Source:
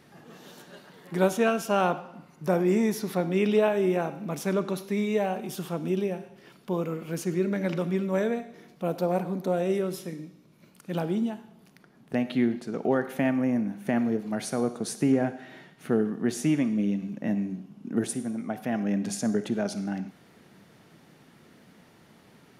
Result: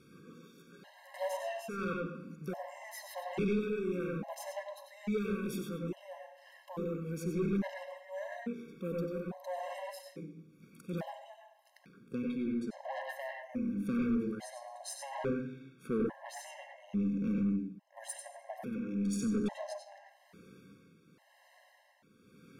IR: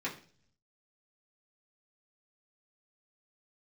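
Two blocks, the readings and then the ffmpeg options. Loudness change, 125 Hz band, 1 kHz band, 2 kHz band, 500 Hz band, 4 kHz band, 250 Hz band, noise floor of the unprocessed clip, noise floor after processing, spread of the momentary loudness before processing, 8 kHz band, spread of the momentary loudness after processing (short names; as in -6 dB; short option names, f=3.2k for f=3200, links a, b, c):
-9.5 dB, -8.5 dB, -10.5 dB, -9.5 dB, -11.5 dB, -10.0 dB, -9.0 dB, -57 dBFS, -65 dBFS, 12 LU, -9.5 dB, 18 LU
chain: -filter_complex "[0:a]tremolo=f=0.93:d=0.64,asplit=2[a][b];[1:a]atrim=start_sample=2205,adelay=92[c];[b][c]afir=irnorm=-1:irlink=0,volume=-4.5dB[d];[a][d]amix=inputs=2:normalize=0,aeval=exprs='(tanh(15.8*val(0)+0.1)-tanh(0.1))/15.8':c=same,acontrast=58,afftfilt=real='re*gt(sin(2*PI*0.59*pts/sr)*(1-2*mod(floor(b*sr/1024/540),2)),0)':imag='im*gt(sin(2*PI*0.59*pts/sr)*(1-2*mod(floor(b*sr/1024/540),2)),0)':win_size=1024:overlap=0.75,volume=-9dB"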